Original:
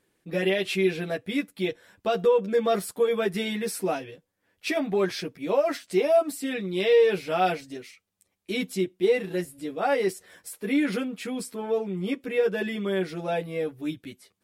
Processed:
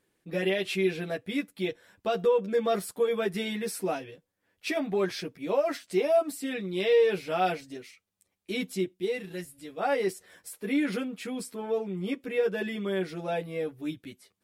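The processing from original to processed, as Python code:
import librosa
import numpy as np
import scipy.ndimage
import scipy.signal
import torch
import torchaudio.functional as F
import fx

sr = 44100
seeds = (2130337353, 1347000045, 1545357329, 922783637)

y = fx.peak_eq(x, sr, hz=fx.line((8.93, 1000.0), (9.77, 270.0)), db=-7.5, octaves=2.8, at=(8.93, 9.77), fade=0.02)
y = y * librosa.db_to_amplitude(-3.0)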